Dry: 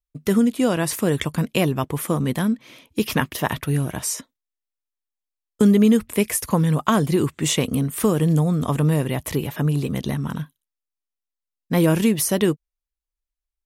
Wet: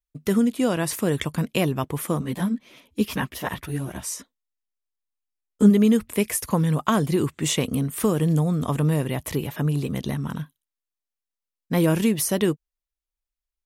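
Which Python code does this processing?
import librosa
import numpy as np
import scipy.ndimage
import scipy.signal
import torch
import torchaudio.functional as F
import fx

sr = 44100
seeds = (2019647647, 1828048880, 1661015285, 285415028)

y = fx.chorus_voices(x, sr, voices=6, hz=1.5, base_ms=13, depth_ms=3.0, mix_pct=60, at=(2.2, 5.69), fade=0.02)
y = y * librosa.db_to_amplitude(-2.5)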